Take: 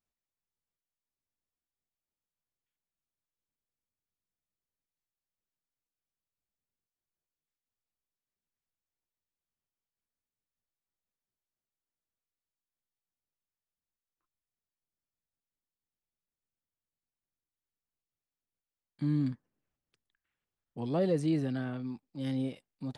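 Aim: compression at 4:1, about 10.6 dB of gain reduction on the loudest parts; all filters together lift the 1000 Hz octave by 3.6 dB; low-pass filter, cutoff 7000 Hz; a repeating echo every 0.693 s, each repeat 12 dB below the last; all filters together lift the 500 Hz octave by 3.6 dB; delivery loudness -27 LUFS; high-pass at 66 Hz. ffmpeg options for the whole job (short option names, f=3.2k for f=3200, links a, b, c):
-af "highpass=66,lowpass=7k,equalizer=f=500:t=o:g=3.5,equalizer=f=1k:t=o:g=3.5,acompressor=threshold=-34dB:ratio=4,aecho=1:1:693|1386|2079:0.251|0.0628|0.0157,volume=12dB"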